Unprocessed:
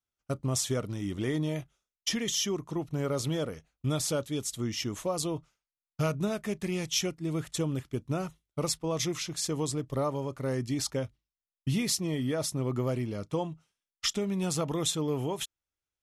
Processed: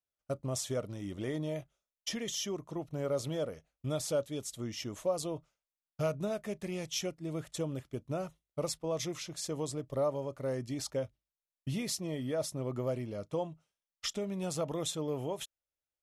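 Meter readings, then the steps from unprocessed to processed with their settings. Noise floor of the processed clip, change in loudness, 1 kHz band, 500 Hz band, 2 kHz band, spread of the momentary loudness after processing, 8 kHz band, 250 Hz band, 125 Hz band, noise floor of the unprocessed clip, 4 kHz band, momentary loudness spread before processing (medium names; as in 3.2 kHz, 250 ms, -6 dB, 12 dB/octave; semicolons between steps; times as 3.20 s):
under -85 dBFS, -5.0 dB, -5.0 dB, -1.5 dB, -7.0 dB, 7 LU, -7.0 dB, -6.5 dB, -7.0 dB, under -85 dBFS, -7.0 dB, 6 LU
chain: peaking EQ 590 Hz +9 dB 0.59 oct; trim -7 dB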